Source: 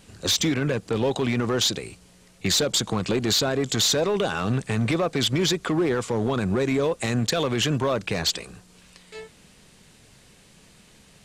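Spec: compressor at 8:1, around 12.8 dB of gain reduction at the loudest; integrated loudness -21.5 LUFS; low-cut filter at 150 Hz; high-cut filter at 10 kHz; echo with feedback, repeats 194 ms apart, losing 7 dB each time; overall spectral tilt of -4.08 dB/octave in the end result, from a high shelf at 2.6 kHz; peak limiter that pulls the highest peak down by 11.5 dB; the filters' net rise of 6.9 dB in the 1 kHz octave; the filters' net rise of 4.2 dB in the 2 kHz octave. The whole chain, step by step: high-pass 150 Hz; low-pass 10 kHz; peaking EQ 1 kHz +8.5 dB; peaking EQ 2 kHz +6.5 dB; treble shelf 2.6 kHz -9 dB; compression 8:1, threshold -31 dBFS; peak limiter -30 dBFS; feedback delay 194 ms, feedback 45%, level -7 dB; trim +17 dB

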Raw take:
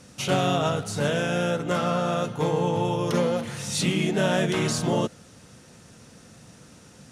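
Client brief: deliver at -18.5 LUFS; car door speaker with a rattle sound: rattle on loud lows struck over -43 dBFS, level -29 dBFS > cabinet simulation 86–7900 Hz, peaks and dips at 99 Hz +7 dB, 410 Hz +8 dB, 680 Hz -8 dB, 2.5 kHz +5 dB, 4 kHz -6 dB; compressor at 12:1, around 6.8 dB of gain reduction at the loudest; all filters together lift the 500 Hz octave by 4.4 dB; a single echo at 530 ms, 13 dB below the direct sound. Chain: peaking EQ 500 Hz +3 dB; compression 12:1, threshold -24 dBFS; delay 530 ms -13 dB; rattle on loud lows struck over -43 dBFS, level -29 dBFS; cabinet simulation 86–7900 Hz, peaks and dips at 99 Hz +7 dB, 410 Hz +8 dB, 680 Hz -8 dB, 2.5 kHz +5 dB, 4 kHz -6 dB; trim +9 dB

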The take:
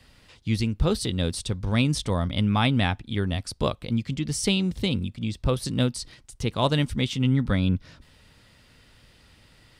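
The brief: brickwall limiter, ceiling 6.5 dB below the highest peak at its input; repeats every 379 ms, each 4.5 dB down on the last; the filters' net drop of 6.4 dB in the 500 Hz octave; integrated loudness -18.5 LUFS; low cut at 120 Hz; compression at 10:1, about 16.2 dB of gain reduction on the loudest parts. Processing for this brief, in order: high-pass 120 Hz; peaking EQ 500 Hz -8 dB; compression 10:1, threshold -37 dBFS; peak limiter -31.5 dBFS; feedback delay 379 ms, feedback 60%, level -4.5 dB; trim +23 dB

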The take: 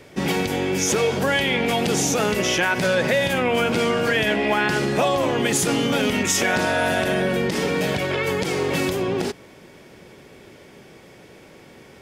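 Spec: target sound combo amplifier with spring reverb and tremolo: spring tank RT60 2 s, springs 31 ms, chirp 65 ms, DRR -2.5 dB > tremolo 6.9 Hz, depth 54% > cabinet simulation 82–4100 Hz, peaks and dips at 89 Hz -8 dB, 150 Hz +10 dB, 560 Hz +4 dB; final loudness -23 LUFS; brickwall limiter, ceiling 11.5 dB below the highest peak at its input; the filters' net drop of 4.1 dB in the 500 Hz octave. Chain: peaking EQ 500 Hz -7.5 dB; peak limiter -20.5 dBFS; spring tank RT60 2 s, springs 31 ms, chirp 65 ms, DRR -2.5 dB; tremolo 6.9 Hz, depth 54%; cabinet simulation 82–4100 Hz, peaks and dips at 89 Hz -8 dB, 150 Hz +10 dB, 560 Hz +4 dB; trim +4 dB

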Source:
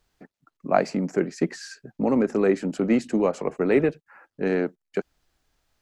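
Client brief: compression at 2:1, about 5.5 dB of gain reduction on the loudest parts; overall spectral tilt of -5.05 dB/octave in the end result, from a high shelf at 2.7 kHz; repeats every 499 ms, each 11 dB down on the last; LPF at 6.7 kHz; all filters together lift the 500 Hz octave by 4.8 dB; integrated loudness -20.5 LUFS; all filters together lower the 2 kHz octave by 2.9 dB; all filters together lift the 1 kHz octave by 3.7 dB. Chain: low-pass 6.7 kHz; peaking EQ 500 Hz +5.5 dB; peaking EQ 1 kHz +4 dB; peaking EQ 2 kHz -3.5 dB; treble shelf 2.7 kHz -5 dB; compression 2:1, threshold -20 dBFS; feedback delay 499 ms, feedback 28%, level -11 dB; trim +4 dB

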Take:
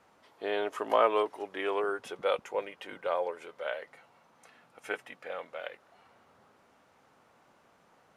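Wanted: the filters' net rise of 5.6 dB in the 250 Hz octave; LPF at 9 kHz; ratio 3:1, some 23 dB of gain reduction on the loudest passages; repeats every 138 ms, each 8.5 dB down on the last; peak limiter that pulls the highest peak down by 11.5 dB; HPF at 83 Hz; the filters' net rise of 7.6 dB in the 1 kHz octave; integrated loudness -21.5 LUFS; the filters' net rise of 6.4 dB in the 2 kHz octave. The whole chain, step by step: high-pass 83 Hz; low-pass 9 kHz; peaking EQ 250 Hz +7.5 dB; peaking EQ 1 kHz +7.5 dB; peaking EQ 2 kHz +5.5 dB; compression 3:1, threshold -46 dBFS; peak limiter -37 dBFS; feedback delay 138 ms, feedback 38%, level -8.5 dB; trim +28.5 dB

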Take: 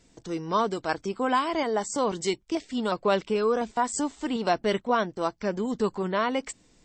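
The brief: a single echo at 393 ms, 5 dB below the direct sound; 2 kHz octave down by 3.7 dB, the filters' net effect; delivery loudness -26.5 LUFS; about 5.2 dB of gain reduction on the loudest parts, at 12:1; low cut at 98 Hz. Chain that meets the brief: high-pass 98 Hz; peaking EQ 2 kHz -5 dB; compression 12:1, threshold -25 dBFS; delay 393 ms -5 dB; trim +4 dB

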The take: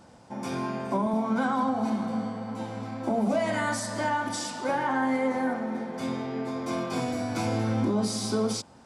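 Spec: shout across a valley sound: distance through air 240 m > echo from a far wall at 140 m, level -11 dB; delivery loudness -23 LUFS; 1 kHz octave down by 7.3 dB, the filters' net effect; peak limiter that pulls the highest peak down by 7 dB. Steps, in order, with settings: peaking EQ 1 kHz -8 dB; peak limiter -24 dBFS; distance through air 240 m; echo from a far wall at 140 m, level -11 dB; trim +10.5 dB

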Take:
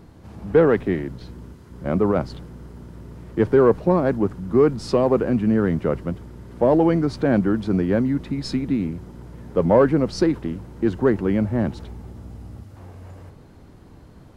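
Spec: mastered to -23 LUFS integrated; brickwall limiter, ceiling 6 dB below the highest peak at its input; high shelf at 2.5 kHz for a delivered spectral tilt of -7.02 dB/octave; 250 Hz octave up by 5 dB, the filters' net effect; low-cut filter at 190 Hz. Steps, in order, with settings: high-pass 190 Hz; peaking EQ 250 Hz +8 dB; treble shelf 2.5 kHz -5.5 dB; trim -4 dB; peak limiter -12 dBFS

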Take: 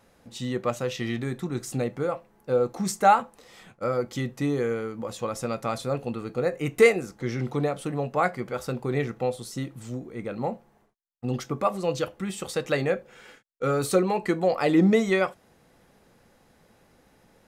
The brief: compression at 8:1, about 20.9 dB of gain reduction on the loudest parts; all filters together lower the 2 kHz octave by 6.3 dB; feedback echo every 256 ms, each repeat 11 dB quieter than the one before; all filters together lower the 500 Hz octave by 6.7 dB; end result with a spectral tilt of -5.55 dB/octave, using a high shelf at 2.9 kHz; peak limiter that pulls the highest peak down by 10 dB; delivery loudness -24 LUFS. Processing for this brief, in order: peaking EQ 500 Hz -7.5 dB; peaking EQ 2 kHz -4.5 dB; treble shelf 2.9 kHz -7.5 dB; compression 8:1, threshold -40 dBFS; peak limiter -38.5 dBFS; feedback delay 256 ms, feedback 28%, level -11 dB; trim +24 dB

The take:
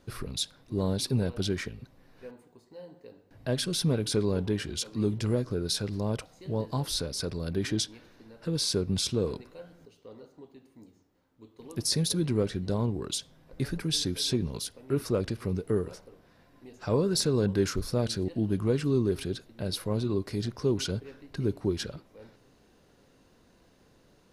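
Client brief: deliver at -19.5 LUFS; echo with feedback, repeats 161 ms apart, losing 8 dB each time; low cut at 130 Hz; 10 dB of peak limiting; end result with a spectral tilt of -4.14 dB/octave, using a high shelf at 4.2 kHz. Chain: high-pass 130 Hz; treble shelf 4.2 kHz +7 dB; peak limiter -19.5 dBFS; feedback delay 161 ms, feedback 40%, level -8 dB; trim +11.5 dB

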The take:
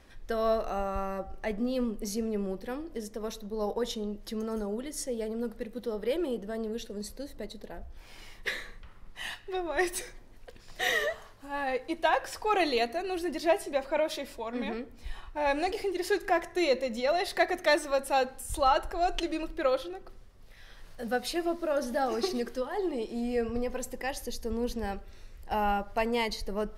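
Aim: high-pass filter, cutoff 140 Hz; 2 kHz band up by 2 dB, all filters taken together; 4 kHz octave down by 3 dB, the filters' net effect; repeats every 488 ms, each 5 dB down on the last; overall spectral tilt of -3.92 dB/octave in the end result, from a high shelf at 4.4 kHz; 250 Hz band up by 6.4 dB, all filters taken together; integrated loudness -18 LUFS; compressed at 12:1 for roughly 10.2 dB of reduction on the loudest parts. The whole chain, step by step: high-pass 140 Hz; peaking EQ 250 Hz +8.5 dB; peaking EQ 2 kHz +3.5 dB; peaking EQ 4 kHz -3.5 dB; treble shelf 4.4 kHz -3 dB; compression 12:1, threshold -29 dBFS; feedback delay 488 ms, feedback 56%, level -5 dB; trim +15.5 dB

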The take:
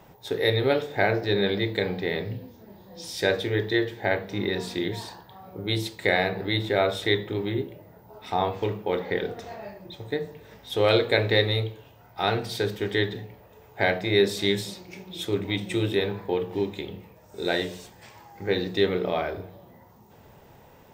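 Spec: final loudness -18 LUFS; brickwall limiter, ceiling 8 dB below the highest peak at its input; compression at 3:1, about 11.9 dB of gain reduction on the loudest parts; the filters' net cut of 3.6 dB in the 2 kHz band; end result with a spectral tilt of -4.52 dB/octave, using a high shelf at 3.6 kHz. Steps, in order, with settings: peaking EQ 2 kHz -3.5 dB; treble shelf 3.6 kHz -3 dB; compression 3:1, threshold -33 dBFS; trim +19.5 dB; peak limiter -4.5 dBFS

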